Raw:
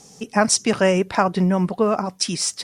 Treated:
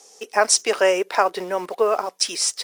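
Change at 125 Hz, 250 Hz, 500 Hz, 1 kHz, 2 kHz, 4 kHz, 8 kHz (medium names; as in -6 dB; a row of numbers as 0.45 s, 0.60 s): under -20 dB, -14.0 dB, +0.5 dB, +0.5 dB, +1.0 dB, +1.5 dB, +1.5 dB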